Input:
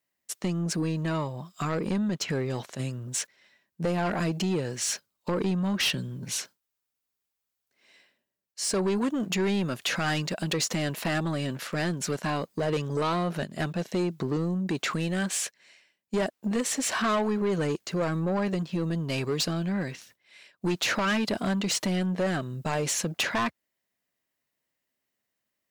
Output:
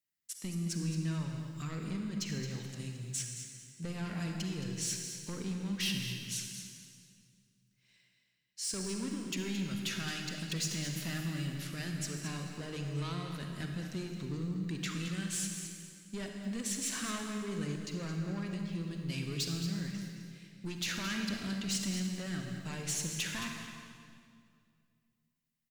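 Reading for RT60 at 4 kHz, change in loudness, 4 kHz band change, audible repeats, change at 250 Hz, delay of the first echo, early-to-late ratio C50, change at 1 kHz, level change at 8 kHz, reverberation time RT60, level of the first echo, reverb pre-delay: 1.8 s, -8.5 dB, -6.5 dB, 1, -8.5 dB, 220 ms, 2.5 dB, -15.5 dB, -5.0 dB, 2.3 s, -10.5 dB, 38 ms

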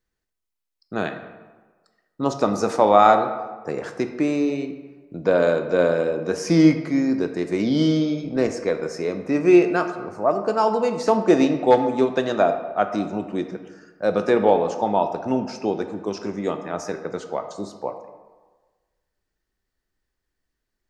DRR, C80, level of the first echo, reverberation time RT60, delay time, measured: 7.0 dB, 10.5 dB, no echo, 1.4 s, no echo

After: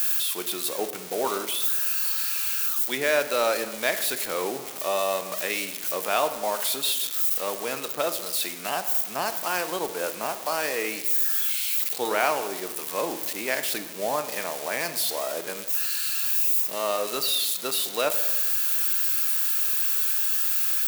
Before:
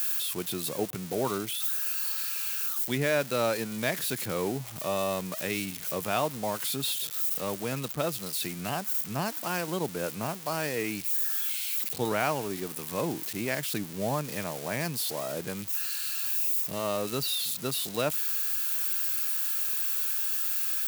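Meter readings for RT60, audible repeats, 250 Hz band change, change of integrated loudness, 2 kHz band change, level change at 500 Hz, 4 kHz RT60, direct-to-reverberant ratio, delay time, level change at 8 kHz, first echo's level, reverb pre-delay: 1.2 s, no echo, -4.0 dB, +5.0 dB, +5.5 dB, +3.5 dB, 0.70 s, 9.5 dB, no echo, +5.0 dB, no echo, 23 ms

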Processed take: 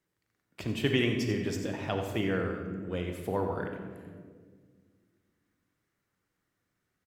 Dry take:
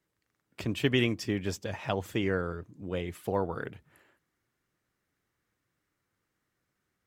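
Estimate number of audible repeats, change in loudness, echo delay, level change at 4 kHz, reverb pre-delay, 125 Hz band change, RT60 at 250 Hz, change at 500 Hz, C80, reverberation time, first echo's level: 1, 0.0 dB, 89 ms, -0.5 dB, 27 ms, +0.5 dB, 2.7 s, 0.0 dB, 5.5 dB, 1.8 s, -10.5 dB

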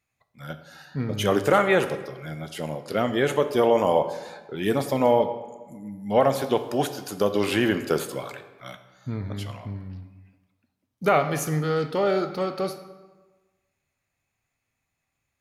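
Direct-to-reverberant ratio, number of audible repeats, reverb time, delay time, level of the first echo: 8.5 dB, no echo, 1.3 s, no echo, no echo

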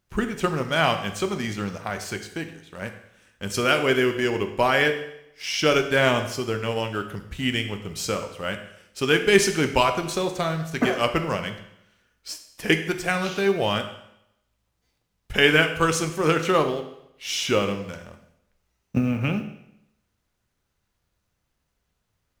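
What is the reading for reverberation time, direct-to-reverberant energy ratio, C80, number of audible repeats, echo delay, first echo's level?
0.80 s, 6.5 dB, 12.0 dB, no echo, no echo, no echo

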